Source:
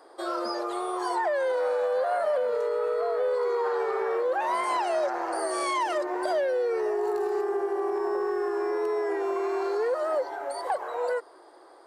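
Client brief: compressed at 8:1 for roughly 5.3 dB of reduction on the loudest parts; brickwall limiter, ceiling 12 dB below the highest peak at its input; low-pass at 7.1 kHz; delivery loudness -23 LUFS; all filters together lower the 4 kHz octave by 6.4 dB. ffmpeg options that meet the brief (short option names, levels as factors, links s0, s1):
-af "lowpass=7100,equalizer=f=4000:t=o:g=-8,acompressor=threshold=0.0355:ratio=8,volume=6.31,alimiter=limit=0.158:level=0:latency=1"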